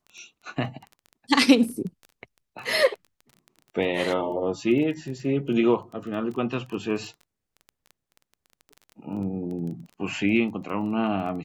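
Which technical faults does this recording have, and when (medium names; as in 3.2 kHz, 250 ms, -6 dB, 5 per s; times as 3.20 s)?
crackle 14 per s -34 dBFS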